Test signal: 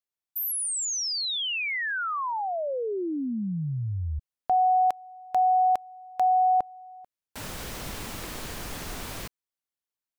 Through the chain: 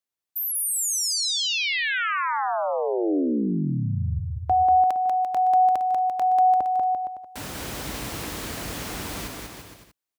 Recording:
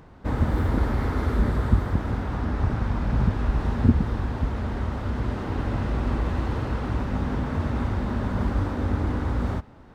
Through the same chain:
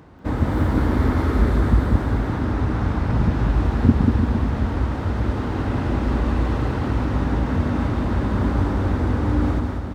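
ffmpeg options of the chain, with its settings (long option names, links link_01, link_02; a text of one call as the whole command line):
ffmpeg -i in.wav -af "highpass=frequency=44:width=0.5412,highpass=frequency=44:width=1.3066,equalizer=frequency=300:width=3.4:gain=4.5,aecho=1:1:190|342|463.6|560.9|638.7:0.631|0.398|0.251|0.158|0.1,volume=2dB" out.wav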